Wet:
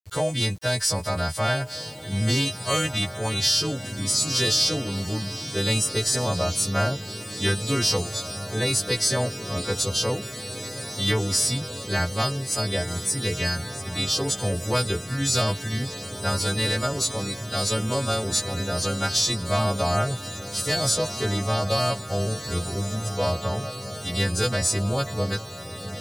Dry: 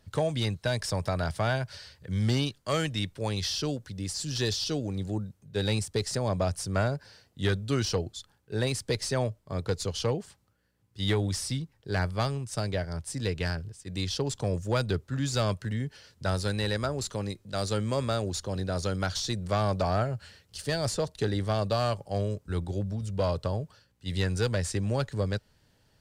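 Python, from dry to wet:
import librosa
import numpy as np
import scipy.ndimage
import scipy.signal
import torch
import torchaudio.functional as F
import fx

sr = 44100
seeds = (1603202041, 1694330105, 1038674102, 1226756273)

y = fx.freq_snap(x, sr, grid_st=2)
y = fx.echo_diffused(y, sr, ms=1805, feedback_pct=64, wet_db=-10.5)
y = np.where(np.abs(y) >= 10.0 ** (-49.0 / 20.0), y, 0.0)
y = y * 10.0 ** (3.0 / 20.0)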